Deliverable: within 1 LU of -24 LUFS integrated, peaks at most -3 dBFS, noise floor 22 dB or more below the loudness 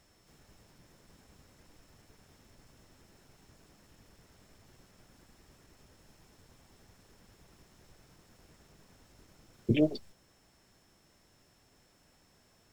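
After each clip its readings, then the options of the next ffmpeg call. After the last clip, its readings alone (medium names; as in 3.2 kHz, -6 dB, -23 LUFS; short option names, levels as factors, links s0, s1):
steady tone 5.4 kHz; tone level -73 dBFS; loudness -31.0 LUFS; peak level -14.0 dBFS; loudness target -24.0 LUFS
-> -af "bandreject=f=5400:w=30"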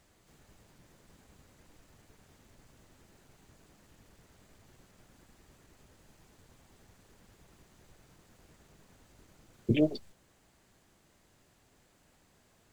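steady tone not found; loudness -31.0 LUFS; peak level -14.0 dBFS; loudness target -24.0 LUFS
-> -af "volume=2.24"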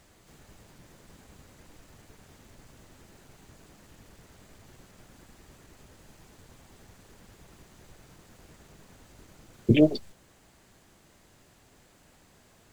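loudness -24.0 LUFS; peak level -7.0 dBFS; noise floor -60 dBFS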